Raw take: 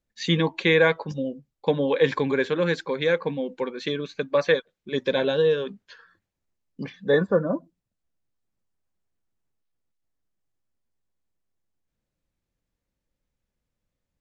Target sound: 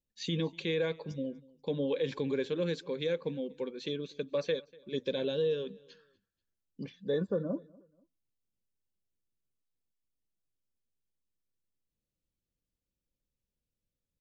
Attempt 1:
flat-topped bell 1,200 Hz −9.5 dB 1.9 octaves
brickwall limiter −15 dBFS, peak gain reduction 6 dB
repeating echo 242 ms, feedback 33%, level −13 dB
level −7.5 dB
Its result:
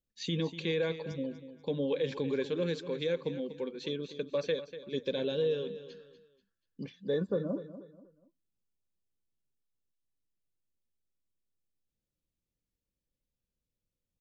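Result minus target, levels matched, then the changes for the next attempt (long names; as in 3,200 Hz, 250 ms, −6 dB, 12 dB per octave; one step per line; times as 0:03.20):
echo-to-direct +11.5 dB
change: repeating echo 242 ms, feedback 33%, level −24.5 dB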